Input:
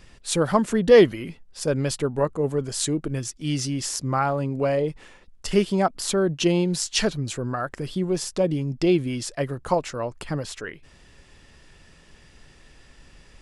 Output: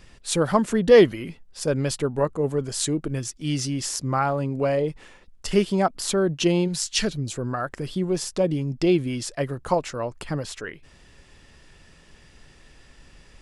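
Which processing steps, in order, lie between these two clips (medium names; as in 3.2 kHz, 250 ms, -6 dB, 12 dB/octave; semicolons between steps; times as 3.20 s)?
6.67–7.35 s: peaking EQ 290 Hz -> 1.9 kHz -9 dB 1.4 oct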